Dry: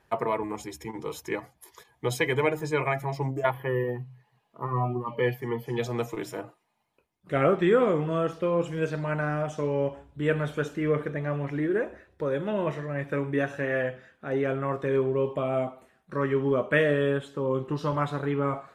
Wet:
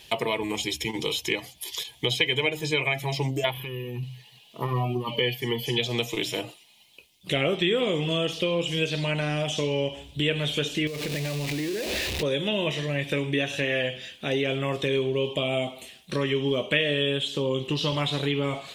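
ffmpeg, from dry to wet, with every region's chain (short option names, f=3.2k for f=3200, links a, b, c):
-filter_complex "[0:a]asettb=1/sr,asplit=3[a][b][c];[a]atrim=end=3.574[d];[b]atrim=start=3.57:end=4.03,asetpts=PTS-STARTPTS,afade=t=in:d=0.004:c=qsin,afade=t=out:st=0.456:d=0.004:c=qsin,acompressor=threshold=-40dB:ratio=6:attack=3.2:release=140:knee=1:detection=peak,aecho=1:1:0.8:0.7,atrim=end_sample=20286[e];[c]atrim=start=4.026[f];[d][e]acrossfade=d=0.004:c1=hsin:c2=qsin[g];[g][f]acrossfade=d=0.004:c1=qsin:c2=hsin,asettb=1/sr,asplit=3[h][i][j];[h]atrim=end=10.874[k];[i]atrim=start=10.87:end=12.23,asetpts=PTS-STARTPTS,afade=t=in:d=0.004:c=qsin,afade=t=out:st=1.356:d=0.004:c=qsin,aeval=exprs='val(0)+0.5*0.0237*sgn(val(0))':c=same,equalizer=f=3.2k:t=o:w=0.3:g=-10,acompressor=threshold=-34dB:ratio=8:attack=3.2:release=140:knee=1:detection=peak[l];[j]atrim=start=12.226[m];[k][l]acrossfade=d=0.004:c1=hsin:c2=qsin[n];[n][m]acrossfade=d=0.004:c1=qsin:c2=hsin,acrossover=split=3300[o][p];[p]acompressor=threshold=-55dB:ratio=4:attack=1:release=60[q];[o][q]amix=inputs=2:normalize=0,highshelf=f=2.1k:t=q:w=3:g=14,acompressor=threshold=-35dB:ratio=2.5,volume=8.5dB"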